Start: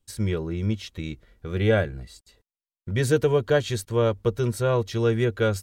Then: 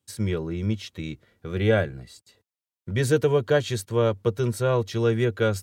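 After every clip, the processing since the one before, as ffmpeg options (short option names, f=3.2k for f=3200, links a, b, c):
-af "highpass=f=83:w=0.5412,highpass=f=83:w=1.3066"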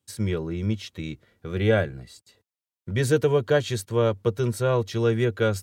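-af anull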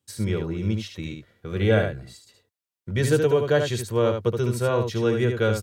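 -af "aecho=1:1:74:0.501"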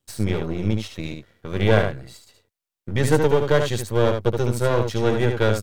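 -af "aeval=exprs='if(lt(val(0),0),0.251*val(0),val(0))':c=same,volume=5dB"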